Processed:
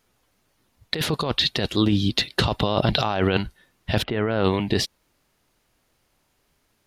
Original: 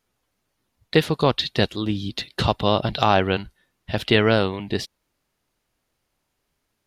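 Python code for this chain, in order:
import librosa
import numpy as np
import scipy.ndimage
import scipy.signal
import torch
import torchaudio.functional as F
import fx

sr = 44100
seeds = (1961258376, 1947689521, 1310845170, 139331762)

y = fx.lowpass(x, sr, hz=fx.line((4.02, 1300.0), (4.43, 2600.0)), slope=12, at=(4.02, 4.43), fade=0.02)
y = fx.over_compress(y, sr, threshold_db=-24.0, ratio=-1.0)
y = y * 10.0 ** (3.0 / 20.0)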